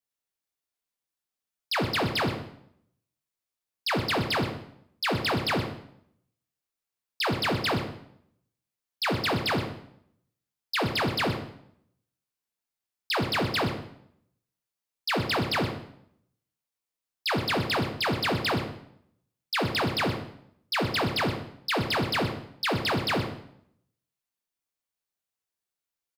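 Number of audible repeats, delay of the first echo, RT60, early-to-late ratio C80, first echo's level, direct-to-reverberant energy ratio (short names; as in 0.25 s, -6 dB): 1, 0.123 s, 0.70 s, 9.5 dB, -13.0 dB, 3.5 dB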